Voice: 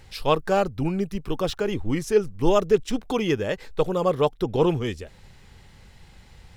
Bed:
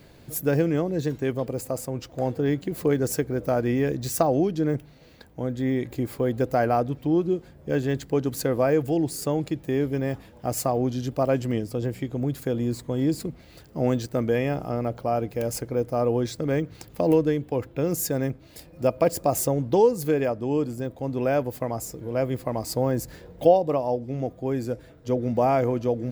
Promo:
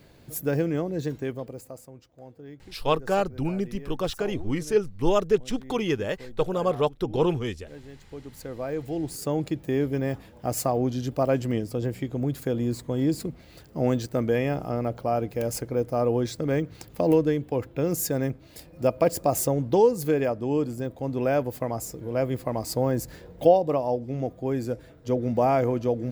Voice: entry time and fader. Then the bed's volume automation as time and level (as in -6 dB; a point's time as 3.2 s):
2.60 s, -2.5 dB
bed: 1.17 s -3 dB
2.16 s -20 dB
7.93 s -20 dB
9.4 s -0.5 dB